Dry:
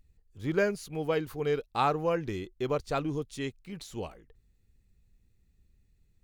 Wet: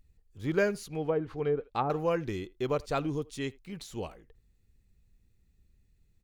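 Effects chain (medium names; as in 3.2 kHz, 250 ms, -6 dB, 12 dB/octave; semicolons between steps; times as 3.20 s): speakerphone echo 80 ms, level -23 dB; 0.85–1.90 s: low-pass that closes with the level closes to 580 Hz, closed at -22.5 dBFS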